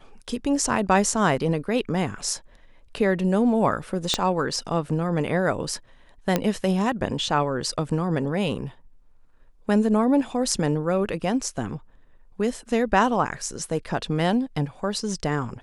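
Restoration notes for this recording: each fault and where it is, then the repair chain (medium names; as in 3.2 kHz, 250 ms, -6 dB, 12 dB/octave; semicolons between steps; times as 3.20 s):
4.14 s: pop -7 dBFS
6.36 s: pop -7 dBFS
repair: de-click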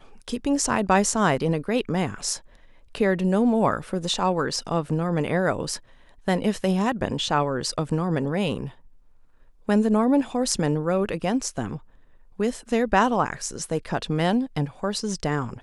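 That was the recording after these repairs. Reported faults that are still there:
4.14 s: pop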